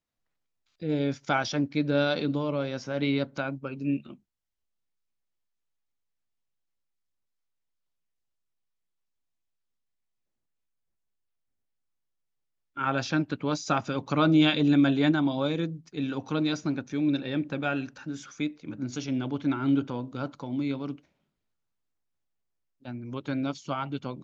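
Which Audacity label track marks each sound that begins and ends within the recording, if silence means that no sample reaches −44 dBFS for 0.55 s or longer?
0.820000	4.150000	sound
12.770000	20.980000	sound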